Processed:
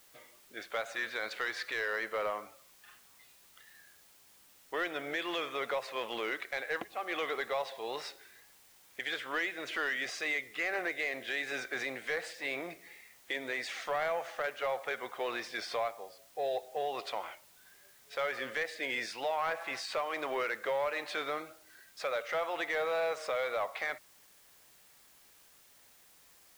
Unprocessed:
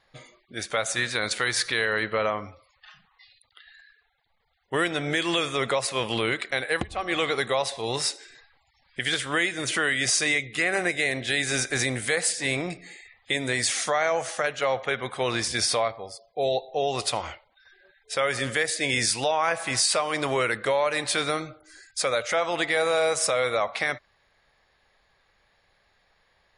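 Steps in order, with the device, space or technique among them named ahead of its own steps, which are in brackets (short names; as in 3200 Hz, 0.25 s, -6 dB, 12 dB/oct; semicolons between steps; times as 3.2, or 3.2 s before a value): tape answering machine (BPF 390–2800 Hz; soft clip -17.5 dBFS, distortion -19 dB; wow and flutter; white noise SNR 24 dB); gain -6.5 dB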